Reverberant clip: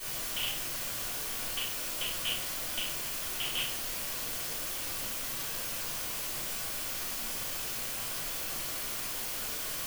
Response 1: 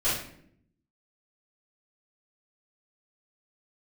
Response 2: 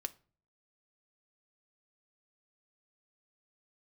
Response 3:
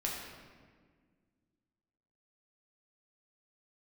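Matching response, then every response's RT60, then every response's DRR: 1; 0.65, 0.40, 1.7 s; -13.5, 9.0, -3.5 dB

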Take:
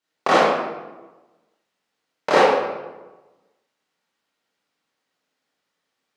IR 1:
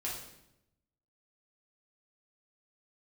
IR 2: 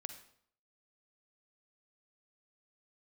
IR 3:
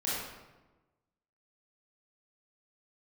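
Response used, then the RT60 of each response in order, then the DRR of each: 3; 0.85, 0.65, 1.2 s; -5.5, 8.0, -9.0 dB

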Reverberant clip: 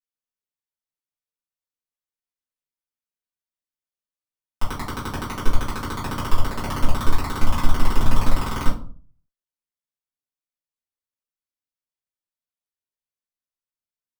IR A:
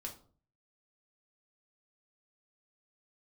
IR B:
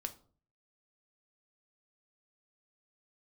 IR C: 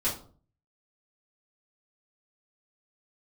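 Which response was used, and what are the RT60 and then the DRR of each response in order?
C; 0.45, 0.45, 0.45 s; 0.0, 6.5, -9.5 dB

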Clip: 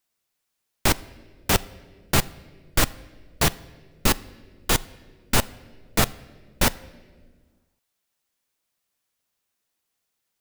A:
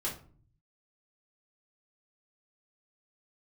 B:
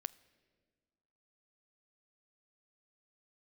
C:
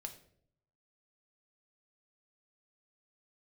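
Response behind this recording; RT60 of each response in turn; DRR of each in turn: B; 0.45, 1.7, 0.65 s; -5.0, 16.0, 5.0 dB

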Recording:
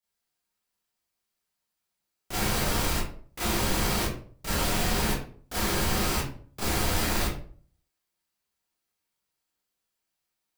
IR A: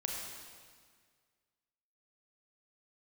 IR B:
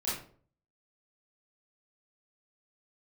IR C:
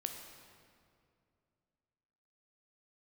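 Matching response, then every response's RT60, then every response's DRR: B; 1.8, 0.50, 2.4 s; -1.0, -10.0, 4.0 dB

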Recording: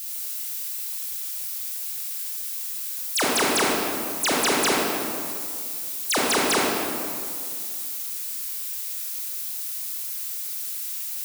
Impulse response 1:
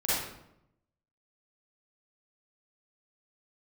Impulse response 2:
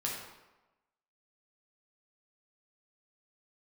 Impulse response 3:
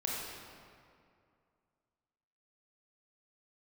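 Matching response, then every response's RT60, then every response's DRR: 3; 0.80, 1.1, 2.3 s; -10.5, -3.5, -4.0 dB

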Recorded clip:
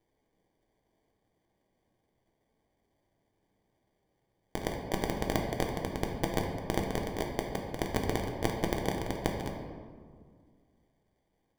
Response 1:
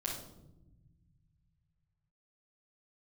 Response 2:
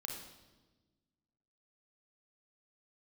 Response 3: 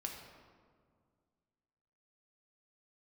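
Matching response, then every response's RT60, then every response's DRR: 3; 0.95, 1.3, 2.0 s; -6.5, 0.0, 0.5 dB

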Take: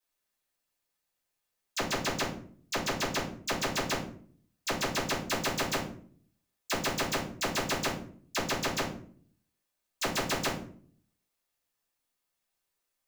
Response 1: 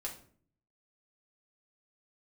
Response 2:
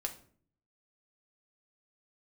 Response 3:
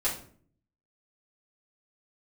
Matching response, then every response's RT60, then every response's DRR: 3; 0.50, 0.50, 0.50 s; -2.0, 3.5, -9.0 dB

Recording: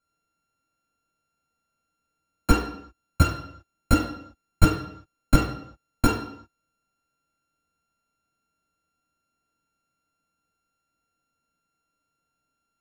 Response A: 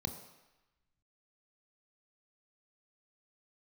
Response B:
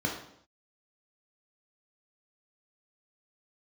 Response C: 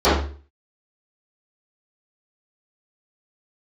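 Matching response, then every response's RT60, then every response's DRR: B; 1.0 s, not exponential, 0.40 s; 6.0, -1.5, -18.0 dB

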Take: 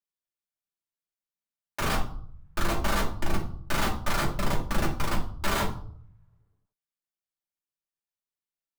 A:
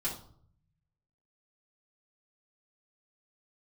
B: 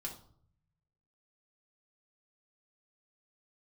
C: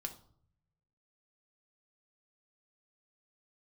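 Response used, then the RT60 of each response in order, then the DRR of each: B; 0.60, 0.60, 0.60 s; -8.0, -2.0, 4.0 dB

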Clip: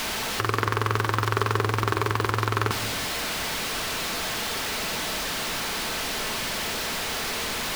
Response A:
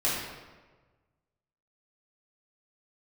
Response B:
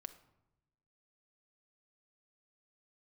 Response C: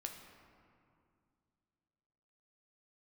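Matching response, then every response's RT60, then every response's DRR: B; 1.3, 0.95, 2.3 s; -9.5, 9.0, 3.0 dB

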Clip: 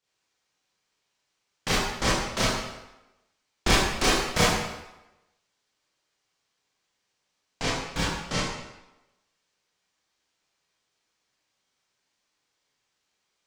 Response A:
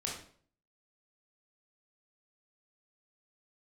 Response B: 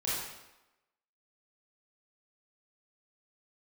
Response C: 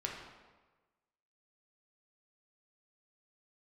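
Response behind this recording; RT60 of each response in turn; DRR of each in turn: B; 0.50, 0.95, 1.3 s; -3.0, -8.5, -1.5 dB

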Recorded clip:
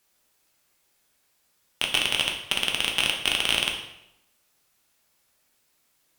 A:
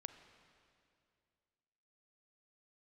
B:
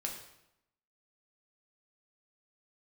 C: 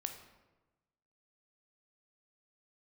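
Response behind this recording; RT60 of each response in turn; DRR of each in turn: B; 2.4, 0.85, 1.1 s; 9.0, 0.0, 5.0 dB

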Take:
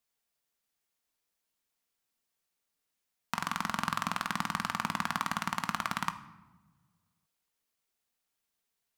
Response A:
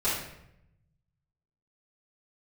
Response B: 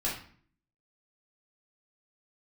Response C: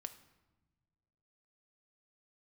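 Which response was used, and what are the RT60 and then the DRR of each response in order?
C; 0.80, 0.50, 1.2 s; -13.0, -6.5, 8.0 dB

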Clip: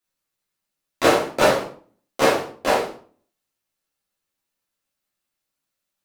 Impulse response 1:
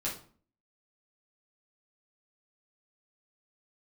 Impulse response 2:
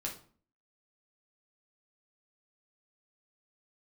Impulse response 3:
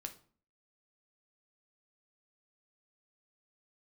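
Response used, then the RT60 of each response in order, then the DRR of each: 1; 0.45, 0.45, 0.45 s; -7.0, -2.0, 5.5 dB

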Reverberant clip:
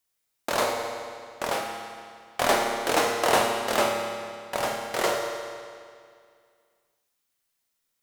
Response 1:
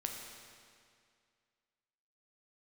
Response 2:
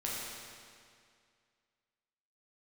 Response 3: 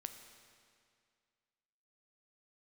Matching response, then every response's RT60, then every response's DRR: 1; 2.2, 2.2, 2.2 s; 1.0, -6.0, 6.5 dB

